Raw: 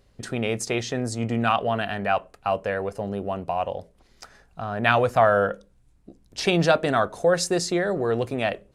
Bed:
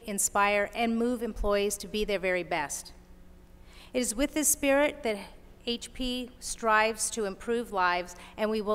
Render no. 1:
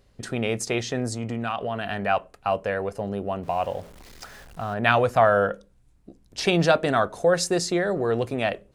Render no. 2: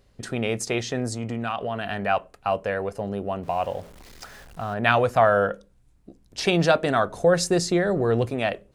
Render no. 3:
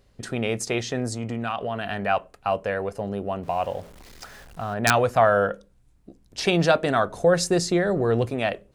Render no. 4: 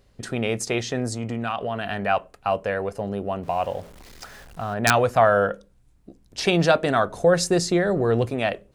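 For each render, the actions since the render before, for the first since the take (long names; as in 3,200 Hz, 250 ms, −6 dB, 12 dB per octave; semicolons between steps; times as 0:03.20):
0:01.13–0:01.85: downward compressor 2.5 to 1, threshold −26 dBFS; 0:03.43–0:04.74: converter with a step at zero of −42.5 dBFS
0:07.07–0:08.30: low-shelf EQ 210 Hz +8 dB
wrap-around overflow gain 6 dB
level +1 dB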